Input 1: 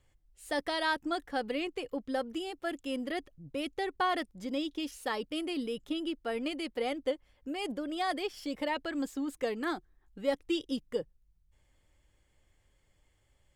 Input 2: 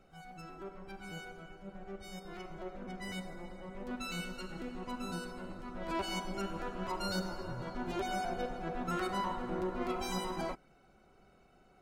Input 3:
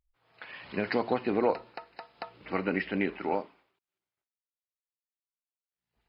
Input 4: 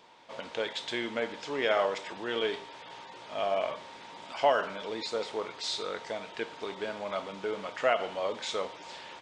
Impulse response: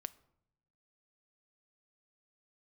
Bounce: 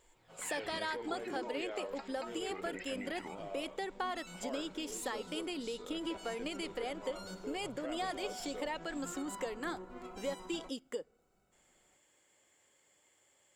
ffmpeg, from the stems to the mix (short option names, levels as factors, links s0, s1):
-filter_complex "[0:a]highpass=320,acompressor=threshold=0.00708:ratio=3,volume=1.19,asplit=2[s0][s1];[s1]volume=0.501[s2];[1:a]adelay=150,volume=0.251[s3];[2:a]acompressor=threshold=0.0178:ratio=6,aphaser=in_gain=1:out_gain=1:delay=4:decay=0.66:speed=0.27:type=triangular,volume=0.794[s4];[3:a]equalizer=f=380:t=o:w=1.3:g=9,volume=0.106[s5];[s3][s4][s5]amix=inputs=3:normalize=0,alimiter=level_in=3.16:limit=0.0631:level=0:latency=1:release=42,volume=0.316,volume=1[s6];[4:a]atrim=start_sample=2205[s7];[s2][s7]afir=irnorm=-1:irlink=0[s8];[s0][s6][s8]amix=inputs=3:normalize=0,equalizer=f=7400:w=5.5:g=12"